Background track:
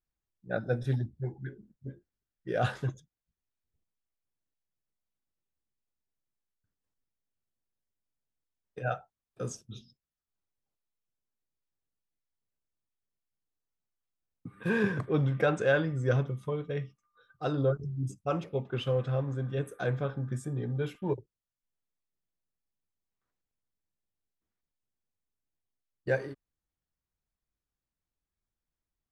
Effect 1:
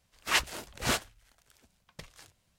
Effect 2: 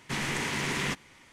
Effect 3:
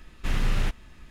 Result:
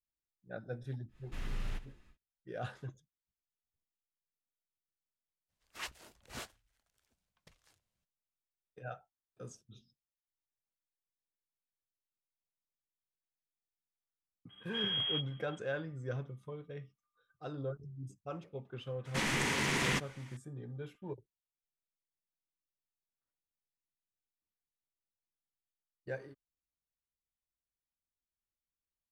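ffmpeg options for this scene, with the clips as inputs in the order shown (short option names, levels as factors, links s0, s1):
-filter_complex "[3:a]asplit=2[s0][s1];[0:a]volume=0.251[s2];[s0]aecho=1:1:73|146|219|292:0.158|0.0713|0.0321|0.0144[s3];[s1]lowpass=f=2800:t=q:w=0.5098,lowpass=f=2800:t=q:w=0.6013,lowpass=f=2800:t=q:w=0.9,lowpass=f=2800:t=q:w=2.563,afreqshift=-3300[s4];[s3]atrim=end=1.1,asetpts=PTS-STARTPTS,volume=0.178,afade=t=in:d=0.1,afade=t=out:st=1:d=0.1,adelay=1080[s5];[1:a]atrim=end=2.58,asetpts=PTS-STARTPTS,volume=0.15,afade=t=in:d=0.02,afade=t=out:st=2.56:d=0.02,adelay=5480[s6];[s4]atrim=end=1.1,asetpts=PTS-STARTPTS,volume=0.211,afade=t=in:d=0.004:c=hsin,afade=t=out:st=1.096:d=0.004:c=hsin,adelay=14490[s7];[2:a]atrim=end=1.32,asetpts=PTS-STARTPTS,volume=0.841,afade=t=in:d=0.004:c=hsin,afade=t=out:st=1.316:d=0.004:c=hsin,adelay=19050[s8];[s2][s5][s6][s7][s8]amix=inputs=5:normalize=0"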